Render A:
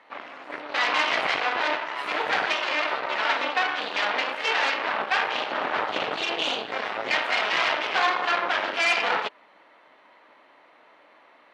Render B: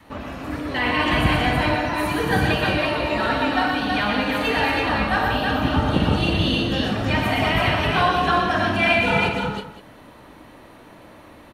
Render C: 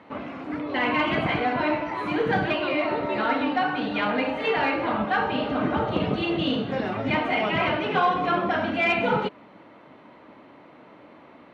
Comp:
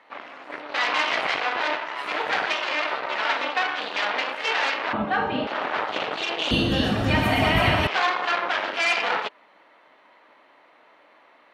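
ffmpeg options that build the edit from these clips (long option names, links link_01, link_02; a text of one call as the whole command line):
ffmpeg -i take0.wav -i take1.wav -i take2.wav -filter_complex "[0:a]asplit=3[link_01][link_02][link_03];[link_01]atrim=end=4.932[link_04];[2:a]atrim=start=4.928:end=5.472[link_05];[link_02]atrim=start=5.468:end=6.512[link_06];[1:a]atrim=start=6.508:end=7.872[link_07];[link_03]atrim=start=7.868[link_08];[link_04][link_05]acrossfade=duration=0.004:curve1=hsin:curve2=hsin[link_09];[link_09][link_06]acrossfade=duration=0.004:curve1=hsin:curve2=hsin[link_10];[link_10][link_07]acrossfade=duration=0.004:curve1=hsin:curve2=hsin[link_11];[link_11][link_08]acrossfade=duration=0.004:curve1=hsin:curve2=hsin" out.wav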